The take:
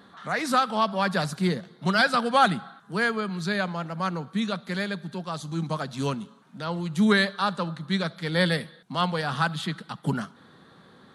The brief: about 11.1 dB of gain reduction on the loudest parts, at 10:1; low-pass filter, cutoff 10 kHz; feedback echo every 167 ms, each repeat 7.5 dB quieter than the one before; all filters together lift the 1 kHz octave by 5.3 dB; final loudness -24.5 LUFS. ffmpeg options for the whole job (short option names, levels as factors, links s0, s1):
-af "lowpass=10000,equalizer=f=1000:t=o:g=7,acompressor=threshold=0.0891:ratio=10,aecho=1:1:167|334|501|668|835:0.422|0.177|0.0744|0.0312|0.0131,volume=1.41"